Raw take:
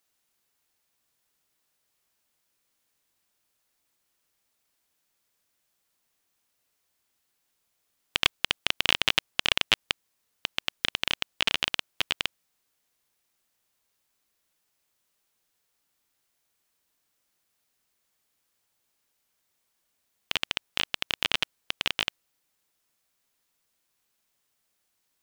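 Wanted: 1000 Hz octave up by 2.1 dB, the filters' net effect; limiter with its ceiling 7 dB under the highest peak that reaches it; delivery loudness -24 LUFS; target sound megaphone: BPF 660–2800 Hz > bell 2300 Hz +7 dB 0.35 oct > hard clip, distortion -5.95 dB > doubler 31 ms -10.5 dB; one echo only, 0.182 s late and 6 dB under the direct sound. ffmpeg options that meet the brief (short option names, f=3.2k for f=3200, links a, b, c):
-filter_complex "[0:a]equalizer=f=1k:t=o:g=3.5,alimiter=limit=-8.5dB:level=0:latency=1,highpass=660,lowpass=2.8k,equalizer=f=2.3k:t=o:w=0.35:g=7,aecho=1:1:182:0.501,asoftclip=type=hard:threshold=-22.5dB,asplit=2[a][b];[b]adelay=31,volume=-10.5dB[c];[a][c]amix=inputs=2:normalize=0,volume=13dB"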